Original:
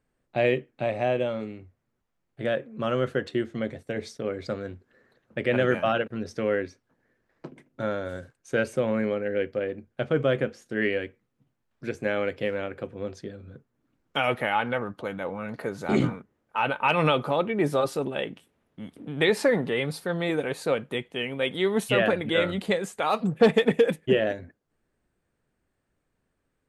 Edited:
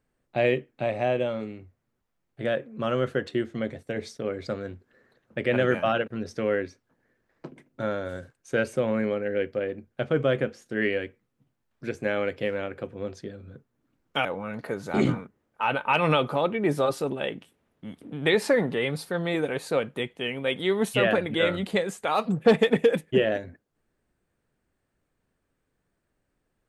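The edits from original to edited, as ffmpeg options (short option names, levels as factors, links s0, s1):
-filter_complex "[0:a]asplit=2[s0][s1];[s0]atrim=end=14.252[s2];[s1]atrim=start=15.198[s3];[s2][s3]acrossfade=d=0.004:c1=hsin:c2=hsin"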